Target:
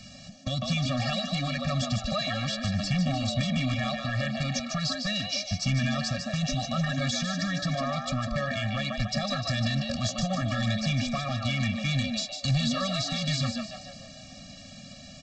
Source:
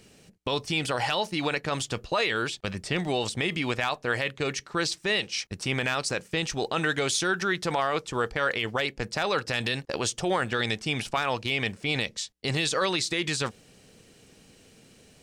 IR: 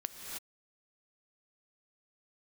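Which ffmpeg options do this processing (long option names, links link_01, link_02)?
-filter_complex "[0:a]aexciter=amount=1.2:drive=8.3:freq=3700,acrossover=split=210[link_01][link_02];[link_02]acompressor=threshold=-36dB:ratio=4[link_03];[link_01][link_03]amix=inputs=2:normalize=0,asplit=7[link_04][link_05][link_06][link_07][link_08][link_09][link_10];[link_05]adelay=150,afreqshift=100,volume=-6dB[link_11];[link_06]adelay=300,afreqshift=200,volume=-12.2dB[link_12];[link_07]adelay=450,afreqshift=300,volume=-18.4dB[link_13];[link_08]adelay=600,afreqshift=400,volume=-24.6dB[link_14];[link_09]adelay=750,afreqshift=500,volume=-30.8dB[link_15];[link_10]adelay=900,afreqshift=600,volume=-37dB[link_16];[link_04][link_11][link_12][link_13][link_14][link_15][link_16]amix=inputs=7:normalize=0,aresample=16000,aeval=exprs='0.106*sin(PI/2*2*val(0)/0.106)':channel_layout=same,aresample=44100,afftfilt=real='re*eq(mod(floor(b*sr/1024/270),2),0)':imag='im*eq(mod(floor(b*sr/1024/270),2),0)':win_size=1024:overlap=0.75"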